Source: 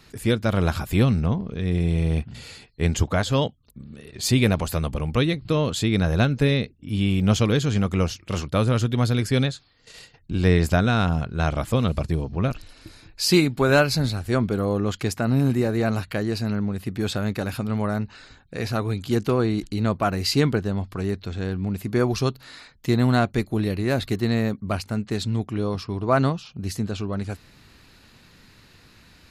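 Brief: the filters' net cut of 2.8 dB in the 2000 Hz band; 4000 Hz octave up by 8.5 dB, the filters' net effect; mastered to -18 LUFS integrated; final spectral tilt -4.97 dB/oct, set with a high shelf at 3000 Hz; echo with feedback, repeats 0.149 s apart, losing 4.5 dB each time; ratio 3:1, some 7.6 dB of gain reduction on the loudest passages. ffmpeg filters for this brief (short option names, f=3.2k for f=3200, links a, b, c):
-af "equalizer=f=2k:t=o:g=-8.5,highshelf=f=3k:g=6,equalizer=f=4k:t=o:g=7.5,acompressor=threshold=-22dB:ratio=3,aecho=1:1:149|298|447|596|745|894|1043|1192|1341:0.596|0.357|0.214|0.129|0.0772|0.0463|0.0278|0.0167|0.01,volume=7dB"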